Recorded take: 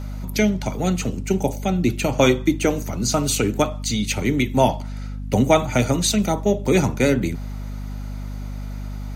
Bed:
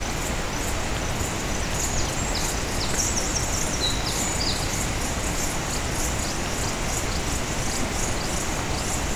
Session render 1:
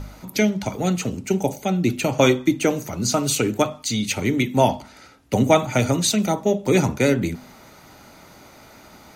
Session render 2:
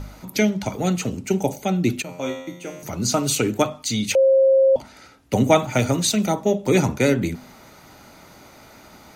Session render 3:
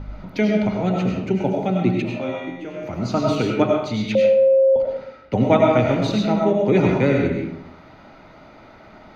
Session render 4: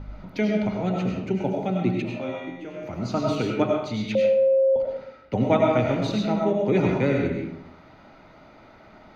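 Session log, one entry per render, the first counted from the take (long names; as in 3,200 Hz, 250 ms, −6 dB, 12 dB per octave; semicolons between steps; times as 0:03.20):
hum removal 50 Hz, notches 5
0:02.02–0:02.83: tuned comb filter 88 Hz, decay 0.87 s, mix 90%; 0:04.15–0:04.76: beep over 535 Hz −11.5 dBFS; 0:05.62–0:06.18: mu-law and A-law mismatch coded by A
high-frequency loss of the air 300 metres; comb and all-pass reverb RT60 0.75 s, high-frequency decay 0.75×, pre-delay 55 ms, DRR −0.5 dB
level −4.5 dB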